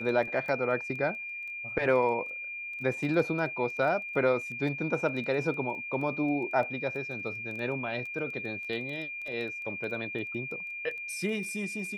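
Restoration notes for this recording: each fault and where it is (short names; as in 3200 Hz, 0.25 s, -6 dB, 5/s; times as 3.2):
crackle 11/s -37 dBFS
tone 2400 Hz -36 dBFS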